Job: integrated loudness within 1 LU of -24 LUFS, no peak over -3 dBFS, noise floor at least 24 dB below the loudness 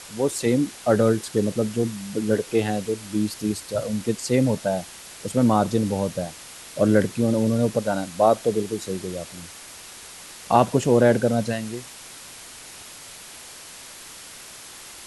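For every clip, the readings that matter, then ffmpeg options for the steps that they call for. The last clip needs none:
noise floor -42 dBFS; noise floor target -47 dBFS; loudness -23.0 LUFS; peak -3.5 dBFS; loudness target -24.0 LUFS
-> -af "afftdn=nr=6:nf=-42"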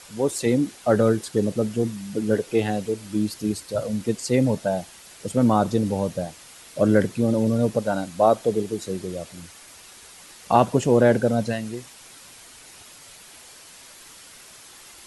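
noise floor -47 dBFS; loudness -23.0 LUFS; peak -3.5 dBFS; loudness target -24.0 LUFS
-> -af "volume=-1dB"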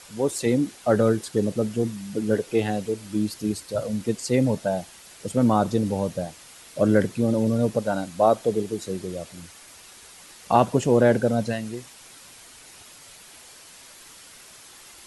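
loudness -24.0 LUFS; peak -4.5 dBFS; noise floor -48 dBFS

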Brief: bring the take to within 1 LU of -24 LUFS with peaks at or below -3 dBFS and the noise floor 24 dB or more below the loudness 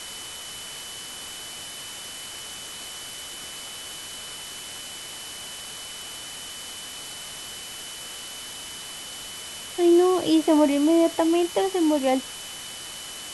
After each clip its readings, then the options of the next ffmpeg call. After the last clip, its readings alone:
steady tone 3000 Hz; tone level -40 dBFS; noise floor -38 dBFS; noise floor target -51 dBFS; loudness -27.0 LUFS; peak -9.0 dBFS; loudness target -24.0 LUFS
-> -af "bandreject=f=3k:w=30"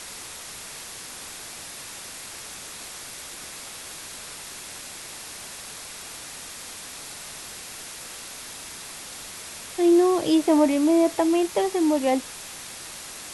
steady tone none; noise floor -39 dBFS; noise floor target -52 dBFS
-> -af "afftdn=nr=13:nf=-39"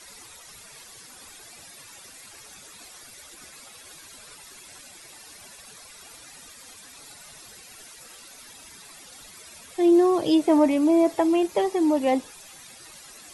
noise floor -47 dBFS; loudness -21.0 LUFS; peak -9.5 dBFS; loudness target -24.0 LUFS
-> -af "volume=-3dB"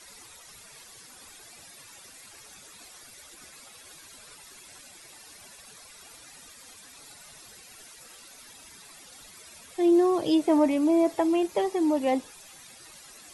loudness -24.0 LUFS; peak -12.5 dBFS; noise floor -50 dBFS

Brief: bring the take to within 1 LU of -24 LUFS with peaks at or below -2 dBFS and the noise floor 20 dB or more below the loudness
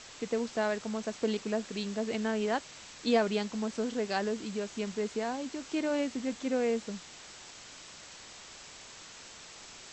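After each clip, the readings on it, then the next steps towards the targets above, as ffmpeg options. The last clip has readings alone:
noise floor -50 dBFS; noise floor target -53 dBFS; loudness -33.0 LUFS; peak -14.0 dBFS; loudness target -24.0 LUFS
-> -af "afftdn=nr=6:nf=-50"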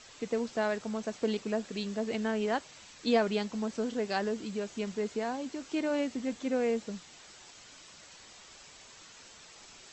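noise floor -54 dBFS; loudness -33.0 LUFS; peak -14.0 dBFS; loudness target -24.0 LUFS
-> -af "volume=9dB"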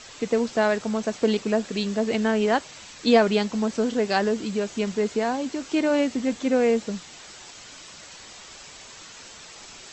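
loudness -24.0 LUFS; peak -5.0 dBFS; noise floor -45 dBFS

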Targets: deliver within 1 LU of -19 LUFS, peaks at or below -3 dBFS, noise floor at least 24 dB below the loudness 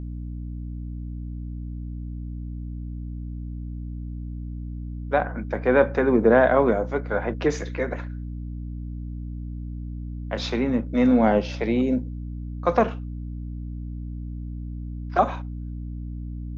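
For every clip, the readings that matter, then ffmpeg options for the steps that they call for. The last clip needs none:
hum 60 Hz; harmonics up to 300 Hz; hum level -30 dBFS; loudness -26.5 LUFS; peak -5.5 dBFS; loudness target -19.0 LUFS
-> -af "bandreject=f=60:t=h:w=4,bandreject=f=120:t=h:w=4,bandreject=f=180:t=h:w=4,bandreject=f=240:t=h:w=4,bandreject=f=300:t=h:w=4"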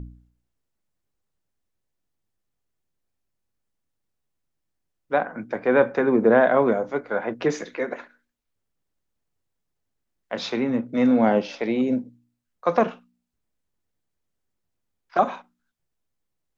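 hum none; loudness -23.0 LUFS; peak -5.5 dBFS; loudness target -19.0 LUFS
-> -af "volume=4dB,alimiter=limit=-3dB:level=0:latency=1"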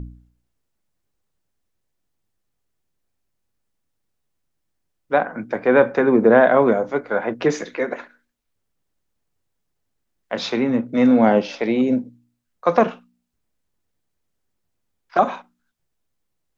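loudness -19.0 LUFS; peak -3.0 dBFS; noise floor -75 dBFS

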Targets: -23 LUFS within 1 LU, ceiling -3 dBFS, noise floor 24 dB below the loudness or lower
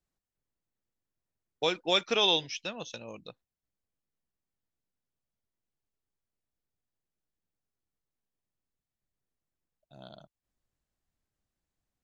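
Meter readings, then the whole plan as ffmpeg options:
loudness -28.0 LUFS; peak -13.5 dBFS; loudness target -23.0 LUFS
-> -af "volume=5dB"

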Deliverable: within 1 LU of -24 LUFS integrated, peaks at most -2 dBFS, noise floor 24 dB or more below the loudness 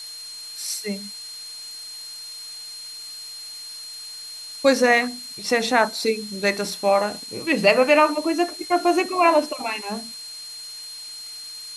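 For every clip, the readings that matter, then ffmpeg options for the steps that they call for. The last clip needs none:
steady tone 4200 Hz; tone level -35 dBFS; noise floor -37 dBFS; noise floor target -45 dBFS; loudness -21.0 LUFS; peak -2.5 dBFS; loudness target -24.0 LUFS
-> -af "bandreject=f=4.2k:w=30"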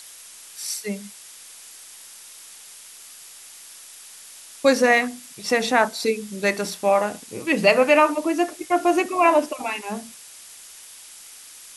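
steady tone none; noise floor -44 dBFS; noise floor target -45 dBFS
-> -af "afftdn=nr=6:nf=-44"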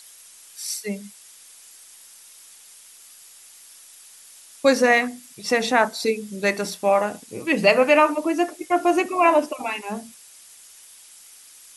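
noise floor -48 dBFS; loudness -21.0 LUFS; peak -2.5 dBFS; loudness target -24.0 LUFS
-> -af "volume=-3dB"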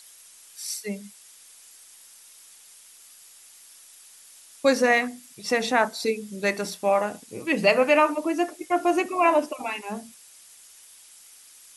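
loudness -24.0 LUFS; peak -5.5 dBFS; noise floor -51 dBFS

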